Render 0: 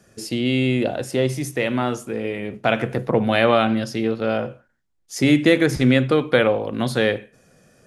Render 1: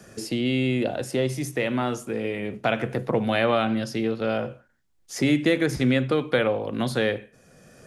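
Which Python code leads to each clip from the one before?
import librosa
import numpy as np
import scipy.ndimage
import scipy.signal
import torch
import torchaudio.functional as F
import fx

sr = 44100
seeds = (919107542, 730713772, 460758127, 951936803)

y = fx.band_squash(x, sr, depth_pct=40)
y = y * 10.0 ** (-4.5 / 20.0)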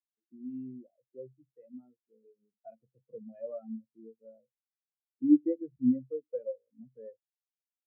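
y = fx.spectral_expand(x, sr, expansion=4.0)
y = y * 10.0 ** (-4.5 / 20.0)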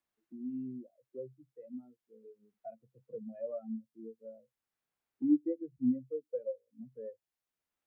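y = fx.band_squash(x, sr, depth_pct=40)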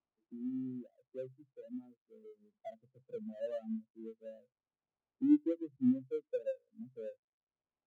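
y = scipy.ndimage.median_filter(x, 25, mode='constant')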